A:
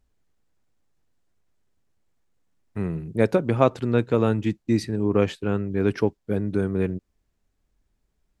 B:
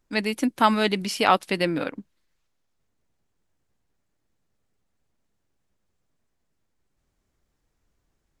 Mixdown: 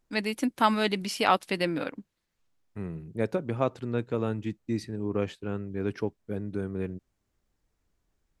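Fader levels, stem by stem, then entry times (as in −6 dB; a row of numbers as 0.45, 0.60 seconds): −8.5, −4.0 decibels; 0.00, 0.00 seconds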